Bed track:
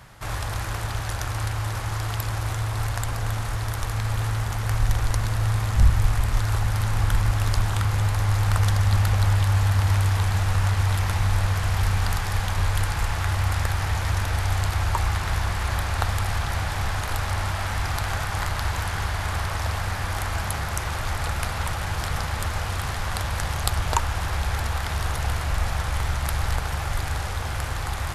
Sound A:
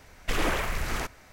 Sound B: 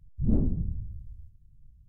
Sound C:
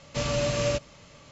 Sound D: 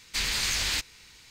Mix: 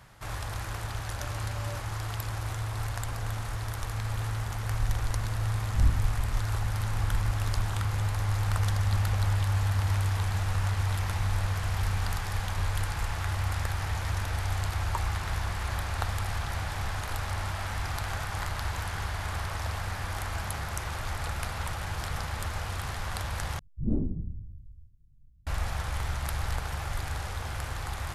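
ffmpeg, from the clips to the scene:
-filter_complex "[2:a]asplit=2[a][b];[0:a]volume=-6.5dB[c];[3:a]asplit=2[d][e];[e]adelay=2.1,afreqshift=2.2[f];[d][f]amix=inputs=2:normalize=1[g];[b]equalizer=f=320:t=o:w=0.69:g=5[h];[c]asplit=2[i][j];[i]atrim=end=23.594[k];[h]atrim=end=1.88,asetpts=PTS-STARTPTS,volume=-4.5dB[l];[j]atrim=start=25.466[m];[g]atrim=end=1.31,asetpts=PTS-STARTPTS,volume=-15.5dB,afade=t=in:d=0.004:c=hsin,afade=t=out:st=1.306:d=0.004:c=hsin,adelay=1030[n];[a]atrim=end=1.88,asetpts=PTS-STARTPTS,volume=-16dB,afade=t=in:d=0.004:c=hsin,afade=t=out:st=1.876:d=0.004:c=hsin,adelay=5510[o];[k][l]acrossfade=d=0.004:c1=hsin:c2=hsin[p];[p][m]acrossfade=d=0.004:c1=hsin:c2=hsin[q];[q][n][o]amix=inputs=3:normalize=0"

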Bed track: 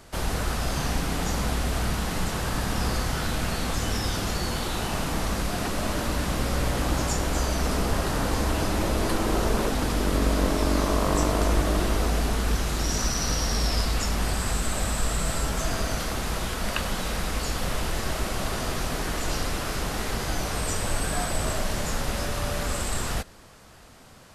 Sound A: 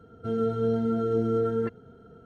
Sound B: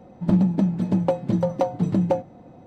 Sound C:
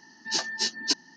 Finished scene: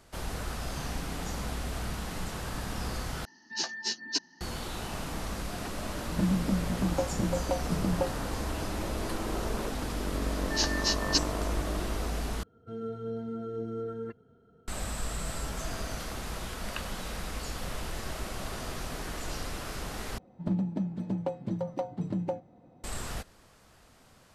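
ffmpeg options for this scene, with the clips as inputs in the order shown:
-filter_complex "[3:a]asplit=2[a][b];[2:a]asplit=2[c][d];[0:a]volume=-8.5dB,asplit=4[e][f][g][h];[e]atrim=end=3.254[i];[a]atrim=end=1.16,asetpts=PTS-STARTPTS,volume=-5dB[j];[f]atrim=start=4.406:end=12.434[k];[1:a]atrim=end=2.25,asetpts=PTS-STARTPTS,volume=-10.5dB[l];[g]atrim=start=14.676:end=20.184[m];[d]atrim=end=2.66,asetpts=PTS-STARTPTS,volume=-11dB[n];[h]atrim=start=22.836[o];[c]atrim=end=2.66,asetpts=PTS-STARTPTS,volume=-9dB,afade=t=in:d=0.004:c=hsin,afade=t=out:st=2.656:d=0.004:c=hsin,adelay=5900[p];[b]atrim=end=1.16,asetpts=PTS-STARTPTS,volume=-1.5dB,afade=t=in:d=0.004:c=hsin,afade=t=out:st=1.156:d=0.004:c=hsin,adelay=10250[q];[i][j]acrossfade=d=0.004:c1=hsin:c2=hsin[r];[r][k]acrossfade=d=0.004:c1=hsin:c2=hsin[s];[s][l]acrossfade=d=0.004:c1=hsin:c2=hsin[t];[t][m]acrossfade=d=0.004:c1=hsin:c2=hsin[u];[u][n]acrossfade=d=0.004:c1=hsin:c2=hsin[v];[v][o]acrossfade=d=0.004:c1=hsin:c2=hsin[w];[w][p][q]amix=inputs=3:normalize=0"

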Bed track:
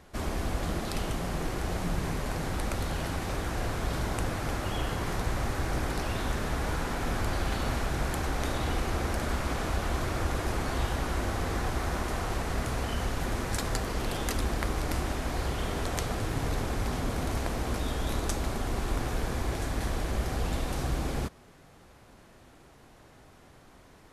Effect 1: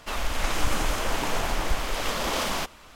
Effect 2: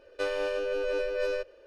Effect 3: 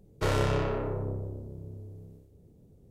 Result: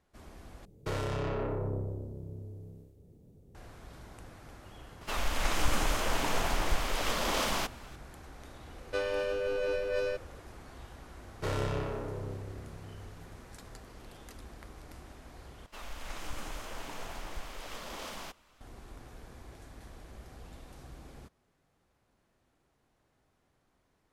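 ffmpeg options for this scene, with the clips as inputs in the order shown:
-filter_complex "[3:a]asplit=2[a][b];[1:a]asplit=2[c][d];[0:a]volume=-19dB[e];[a]alimiter=level_in=2dB:limit=-24dB:level=0:latency=1:release=13,volume=-2dB[f];[e]asplit=3[g][h][i];[g]atrim=end=0.654[j];[f]atrim=end=2.9,asetpts=PTS-STARTPTS,volume=-0.5dB[k];[h]atrim=start=3.546:end=15.664[l];[d]atrim=end=2.95,asetpts=PTS-STARTPTS,volume=-15dB[m];[i]atrim=start=18.606[n];[c]atrim=end=2.95,asetpts=PTS-STARTPTS,volume=-3.5dB,afade=t=in:d=0.004:c=hsin,afade=t=out:st=2.946:d=0.004:c=hsin,adelay=220941S[o];[2:a]atrim=end=1.66,asetpts=PTS-STARTPTS,volume=-2dB,afade=t=in:d=0.004:c=hsin,afade=t=out:st=1.656:d=0.004:c=hsin,adelay=385434S[p];[b]atrim=end=2.9,asetpts=PTS-STARTPTS,volume=-6dB,afade=t=in:d=0.004:c=hsin,afade=t=out:st=2.896:d=0.004:c=hsin,adelay=11210[q];[j][k]acrossfade=d=0.004:c1=hsin:c2=hsin[r];[r][l]acrossfade=d=0.004:c1=hsin:c2=hsin[s];[s][m]acrossfade=d=0.004:c1=hsin:c2=hsin[t];[t][n]acrossfade=d=0.004:c1=hsin:c2=hsin[u];[u][o][p][q]amix=inputs=4:normalize=0"

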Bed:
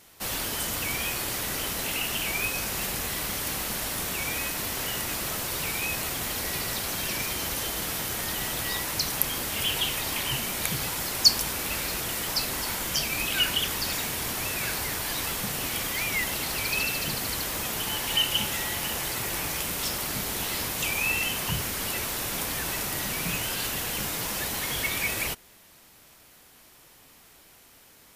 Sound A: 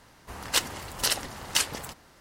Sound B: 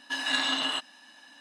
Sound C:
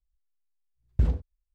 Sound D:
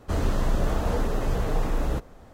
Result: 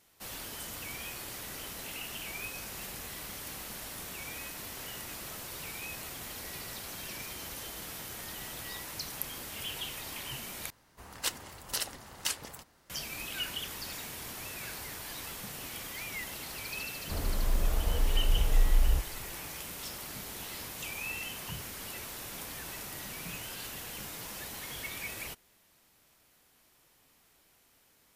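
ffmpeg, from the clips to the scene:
-filter_complex "[0:a]volume=-11.5dB[a];[1:a]highshelf=f=11k:g=8[b];[4:a]asubboost=boost=9.5:cutoff=81[c];[a]asplit=2[d][e];[d]atrim=end=10.704[f];[b]atrim=end=2.2,asetpts=PTS-STARTPTS,volume=-9.5dB[g];[e]atrim=start=12.896[h];[c]atrim=end=2.33,asetpts=PTS-STARTPTS,volume=-11dB,afade=t=in:d=0.004:c=hsin,afade=t=out:st=2.326:d=0.004:c=hsin,adelay=17010[i];[f][g]acrossfade=d=0.004:c1=hsin:c2=hsin[j];[j][h]acrossfade=d=0.004:c1=hsin:c2=hsin[k];[k][i]amix=inputs=2:normalize=0"

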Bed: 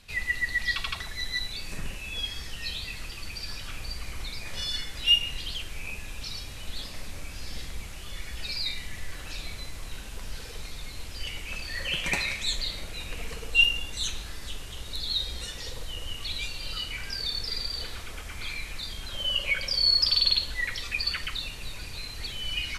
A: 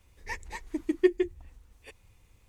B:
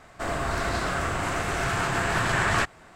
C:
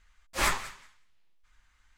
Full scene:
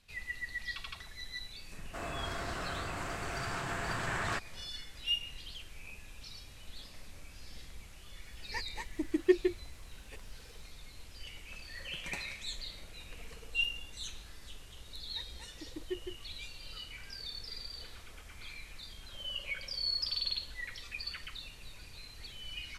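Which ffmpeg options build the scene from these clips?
-filter_complex "[1:a]asplit=2[a][b];[0:a]volume=-12dB[c];[2:a]atrim=end=2.95,asetpts=PTS-STARTPTS,volume=-11.5dB,afade=t=in:d=0.004:c=hsin,afade=t=out:st=2.946:d=0.004:c=hsin,adelay=1740[d];[a]atrim=end=2.48,asetpts=PTS-STARTPTS,volume=-3dB,afade=t=in:d=0.004:c=hsin,afade=t=out:st=2.476:d=0.004:c=hsin,adelay=8250[e];[b]atrim=end=2.48,asetpts=PTS-STARTPTS,volume=-17dB,afade=t=in:d=0.004:c=hsin,afade=t=out:st=2.476:d=0.004:c=hsin,adelay=14870[f];[c][d][e][f]amix=inputs=4:normalize=0"

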